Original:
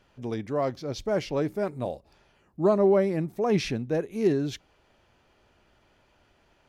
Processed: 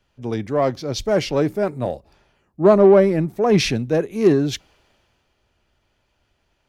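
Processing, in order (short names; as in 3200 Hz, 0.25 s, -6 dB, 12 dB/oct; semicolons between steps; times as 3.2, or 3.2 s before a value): in parallel at -6 dB: soft clip -26 dBFS, distortion -8 dB; on the sum: three-band expander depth 40%; gain +5.5 dB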